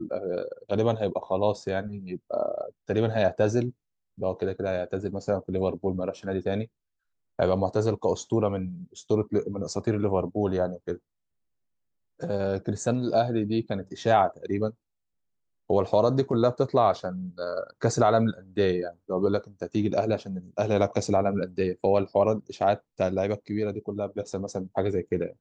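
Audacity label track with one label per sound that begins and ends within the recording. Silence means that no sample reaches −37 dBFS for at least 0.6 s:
7.390000	10.960000	sound
12.200000	14.700000	sound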